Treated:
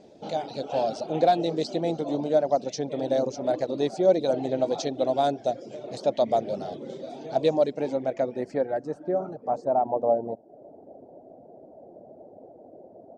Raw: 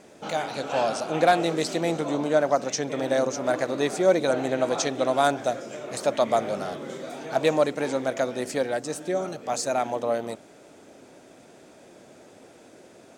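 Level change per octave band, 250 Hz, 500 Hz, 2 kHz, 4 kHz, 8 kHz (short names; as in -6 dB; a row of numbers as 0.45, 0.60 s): -1.0 dB, -0.5 dB, -13.0 dB, -5.0 dB, under -10 dB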